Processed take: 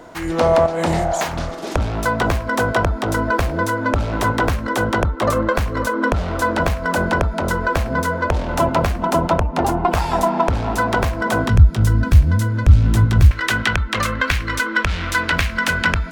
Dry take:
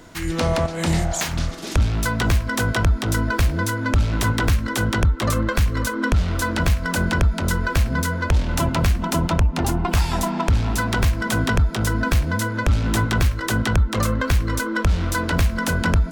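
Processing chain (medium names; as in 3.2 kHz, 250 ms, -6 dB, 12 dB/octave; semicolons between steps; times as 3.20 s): peaking EQ 680 Hz +14 dB 2.4 oct, from 11.48 s 83 Hz, from 13.31 s 2.2 kHz; trim -4 dB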